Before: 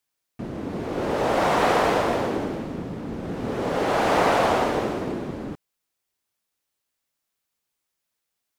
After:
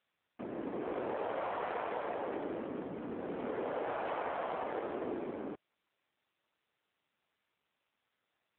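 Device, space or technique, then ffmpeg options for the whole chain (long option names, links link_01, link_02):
voicemail: -af "highpass=320,lowpass=2700,acompressor=threshold=-29dB:ratio=8,volume=-3.5dB" -ar 8000 -c:a libopencore_amrnb -b:a 7400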